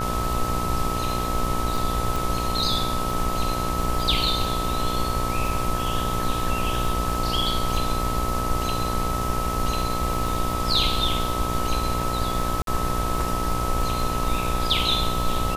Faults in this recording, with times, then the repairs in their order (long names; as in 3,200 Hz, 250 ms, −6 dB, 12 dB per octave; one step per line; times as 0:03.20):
mains buzz 60 Hz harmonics 22 −29 dBFS
surface crackle 23 per second −28 dBFS
whistle 1,300 Hz −28 dBFS
0:02.16: click
0:12.62–0:12.67: drop-out 52 ms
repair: click removal
hum removal 60 Hz, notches 22
notch filter 1,300 Hz, Q 30
repair the gap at 0:12.62, 52 ms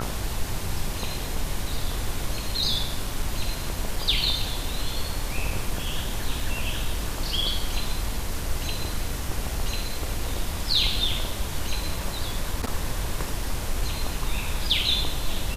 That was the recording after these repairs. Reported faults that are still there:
none of them is left